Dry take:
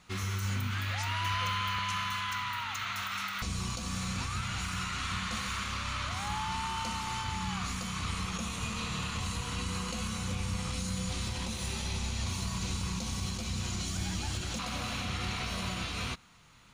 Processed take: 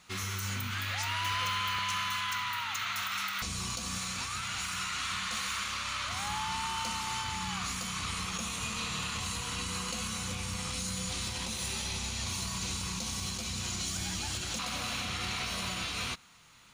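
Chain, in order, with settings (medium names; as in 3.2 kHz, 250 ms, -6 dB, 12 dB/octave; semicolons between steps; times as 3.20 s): tilt EQ +1.5 dB/octave; hard clipper -26 dBFS, distortion -27 dB; 3.98–6.09 s: bass shelf 380 Hz -5.5 dB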